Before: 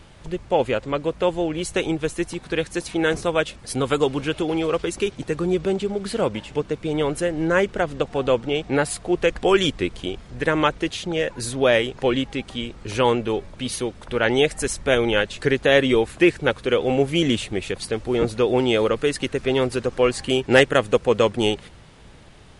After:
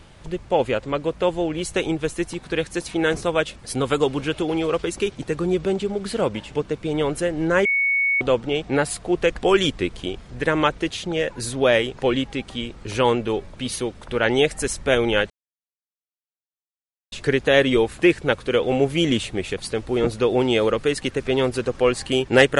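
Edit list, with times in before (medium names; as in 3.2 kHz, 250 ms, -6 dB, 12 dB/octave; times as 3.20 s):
7.65–8.21 s: bleep 2.22 kHz -17 dBFS
15.30 s: insert silence 1.82 s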